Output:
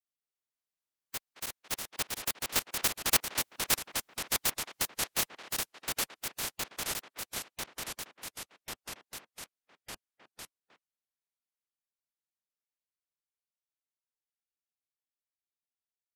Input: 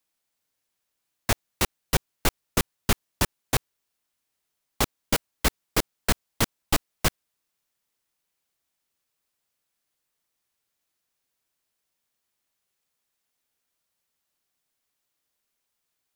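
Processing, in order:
ceiling on every frequency bin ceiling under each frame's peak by 25 dB
source passing by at 0:03.51, 40 m/s, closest 13 metres
far-end echo of a speakerphone 220 ms, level −12 dB
delay with pitch and tempo change per echo 187 ms, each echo −2 semitones, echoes 3
level +3 dB

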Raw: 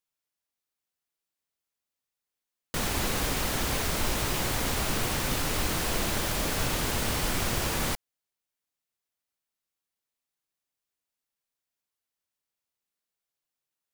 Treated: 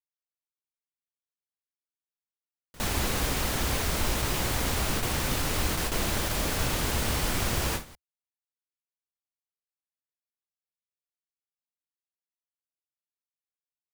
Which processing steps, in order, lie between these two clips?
noise gate with hold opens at −18 dBFS
parametric band 68 Hz +5 dB 0.84 octaves

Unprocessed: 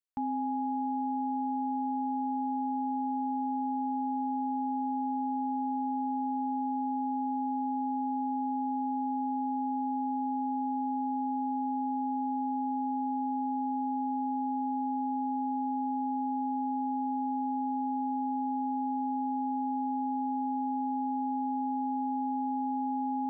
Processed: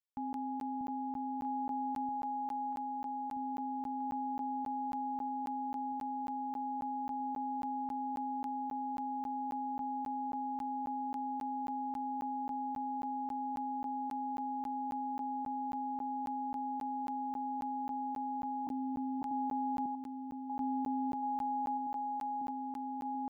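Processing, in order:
0:18.67–0:19.22: Butterworth high-pass 230 Hz 96 dB per octave
delay that swaps between a low-pass and a high-pass 639 ms, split 810 Hz, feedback 83%, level −2.5 dB
regular buffer underruns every 0.27 s, samples 512, zero, from 0:00.33
level −6.5 dB

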